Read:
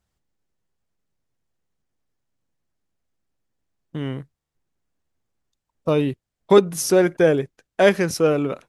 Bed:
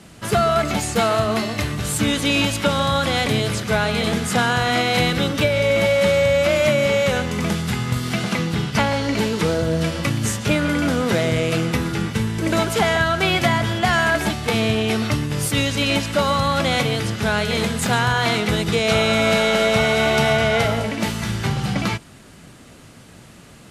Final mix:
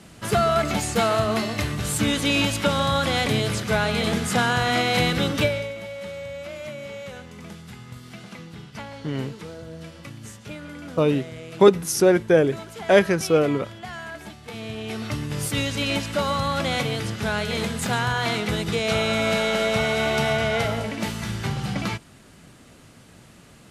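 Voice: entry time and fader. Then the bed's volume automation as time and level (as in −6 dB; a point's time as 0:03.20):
5.10 s, −0.5 dB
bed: 0:05.46 −2.5 dB
0:05.76 −18 dB
0:14.42 −18 dB
0:15.31 −5 dB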